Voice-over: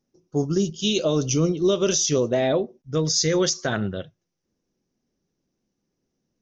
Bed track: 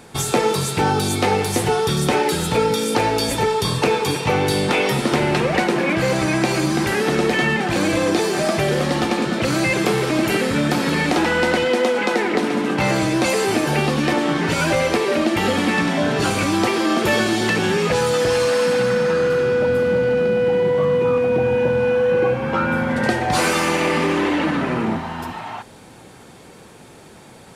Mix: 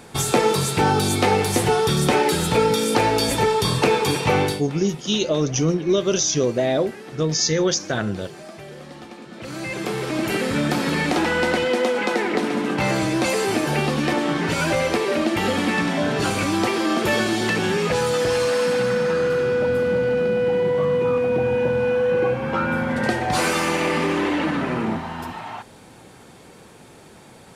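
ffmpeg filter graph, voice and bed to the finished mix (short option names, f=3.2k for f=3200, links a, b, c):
-filter_complex "[0:a]adelay=4250,volume=1dB[a];[1:a]volume=17dB,afade=t=out:st=4.41:d=0.21:silence=0.105925,afade=t=in:st=9.28:d=1.28:silence=0.141254[b];[a][b]amix=inputs=2:normalize=0"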